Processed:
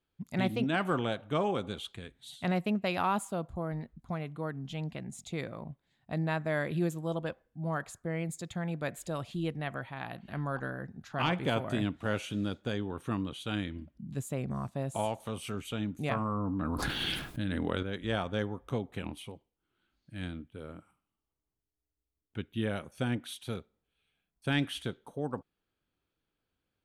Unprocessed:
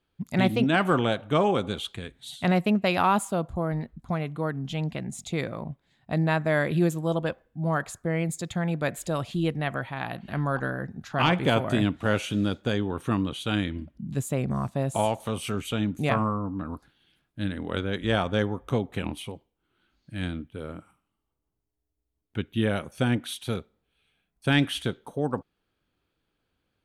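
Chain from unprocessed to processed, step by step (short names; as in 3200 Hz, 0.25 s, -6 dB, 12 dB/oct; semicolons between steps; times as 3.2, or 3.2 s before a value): 16.25–17.83 fast leveller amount 100%; gain -7.5 dB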